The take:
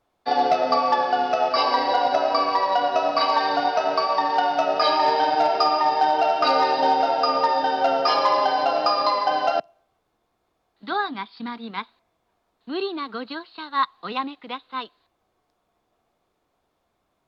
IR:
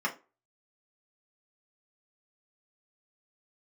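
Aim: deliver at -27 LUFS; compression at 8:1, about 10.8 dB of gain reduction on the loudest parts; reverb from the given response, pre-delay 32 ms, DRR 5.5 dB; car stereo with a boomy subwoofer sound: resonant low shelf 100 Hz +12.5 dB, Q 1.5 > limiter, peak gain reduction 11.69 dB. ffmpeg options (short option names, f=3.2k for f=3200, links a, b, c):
-filter_complex "[0:a]acompressor=threshold=-27dB:ratio=8,asplit=2[a][b];[1:a]atrim=start_sample=2205,adelay=32[c];[b][c]afir=irnorm=-1:irlink=0,volume=-14dB[d];[a][d]amix=inputs=2:normalize=0,lowshelf=f=100:t=q:w=1.5:g=12.5,volume=9.5dB,alimiter=limit=-18.5dB:level=0:latency=1"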